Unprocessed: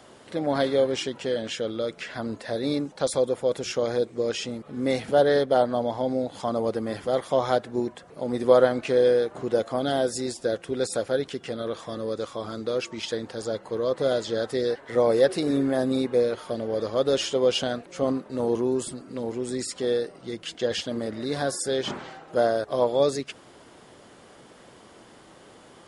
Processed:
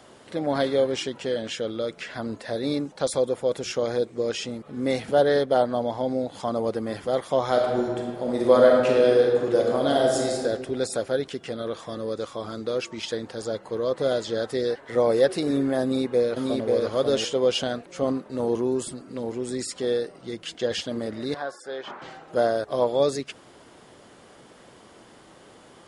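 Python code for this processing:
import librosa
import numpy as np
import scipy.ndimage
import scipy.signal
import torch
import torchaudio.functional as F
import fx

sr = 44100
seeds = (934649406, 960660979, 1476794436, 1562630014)

y = fx.reverb_throw(x, sr, start_s=7.48, length_s=2.9, rt60_s=1.7, drr_db=-0.5)
y = fx.echo_throw(y, sr, start_s=15.82, length_s=0.88, ms=540, feedback_pct=10, wet_db=-2.5)
y = fx.bandpass_q(y, sr, hz=1100.0, q=1.1, at=(21.34, 22.02))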